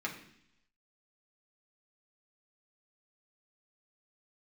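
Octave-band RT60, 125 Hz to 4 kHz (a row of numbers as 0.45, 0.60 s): 0.90, 0.85, 0.70, 0.70, 0.85, 0.95 s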